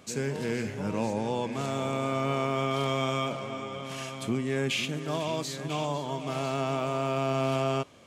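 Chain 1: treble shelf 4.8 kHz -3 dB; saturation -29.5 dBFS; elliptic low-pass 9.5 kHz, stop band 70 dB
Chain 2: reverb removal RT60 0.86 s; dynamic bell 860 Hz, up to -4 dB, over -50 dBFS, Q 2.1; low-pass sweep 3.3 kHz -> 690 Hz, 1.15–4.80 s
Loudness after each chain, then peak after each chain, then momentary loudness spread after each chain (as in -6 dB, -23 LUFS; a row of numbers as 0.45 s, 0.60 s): -35.5 LUFS, -31.5 LUFS; -27.5 dBFS, -17.0 dBFS; 3 LU, 7 LU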